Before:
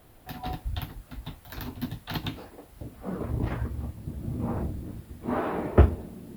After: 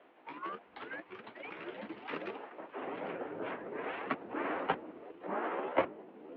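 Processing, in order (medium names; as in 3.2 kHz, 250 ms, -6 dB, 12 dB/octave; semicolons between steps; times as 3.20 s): sawtooth pitch modulation +10 st, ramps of 585 ms; in parallel at +0.5 dB: compression, threshold -42 dBFS, peak gain reduction 27 dB; on the sum: ever faster or slower copies 609 ms, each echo +6 st, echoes 2; mistuned SSB -58 Hz 370–3000 Hz; trim -6 dB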